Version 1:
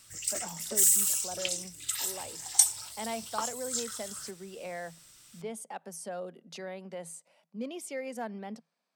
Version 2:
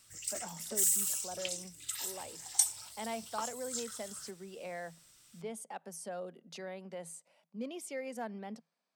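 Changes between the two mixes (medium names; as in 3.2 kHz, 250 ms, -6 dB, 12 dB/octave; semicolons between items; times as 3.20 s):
speech -3.0 dB; background -6.0 dB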